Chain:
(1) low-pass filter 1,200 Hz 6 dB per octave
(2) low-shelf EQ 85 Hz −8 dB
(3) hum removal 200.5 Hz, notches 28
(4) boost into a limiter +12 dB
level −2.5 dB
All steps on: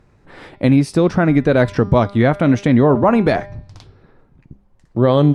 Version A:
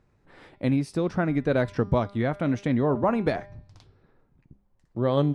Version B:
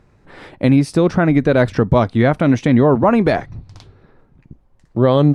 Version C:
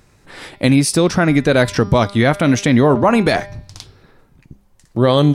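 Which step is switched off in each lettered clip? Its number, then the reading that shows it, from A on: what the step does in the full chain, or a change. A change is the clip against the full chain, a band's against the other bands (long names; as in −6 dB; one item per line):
4, change in crest factor +3.5 dB
3, change in momentary loudness spread −1 LU
1, 4 kHz band +9.5 dB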